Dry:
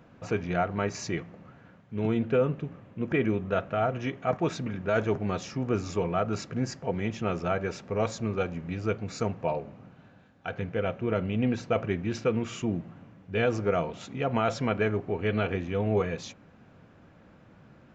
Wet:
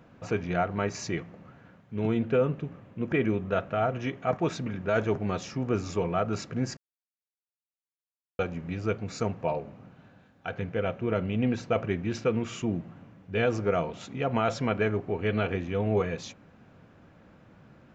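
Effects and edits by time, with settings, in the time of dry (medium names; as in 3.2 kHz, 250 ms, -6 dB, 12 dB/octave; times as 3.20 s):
6.77–8.39 s: mute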